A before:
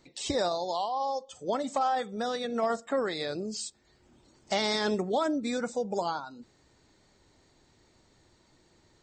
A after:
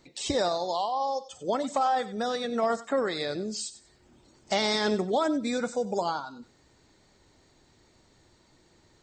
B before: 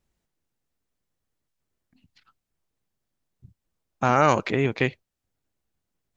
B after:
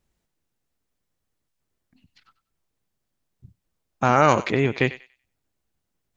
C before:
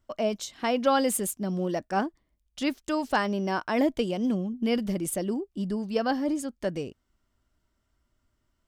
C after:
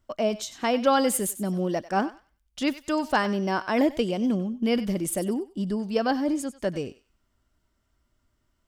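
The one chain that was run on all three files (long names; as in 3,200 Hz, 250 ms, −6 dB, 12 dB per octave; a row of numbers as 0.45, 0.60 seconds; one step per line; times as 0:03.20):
feedback echo with a high-pass in the loop 95 ms, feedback 26%, high-pass 1,000 Hz, level −13.5 dB
level +2 dB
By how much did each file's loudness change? +2.0, +2.0, +2.0 LU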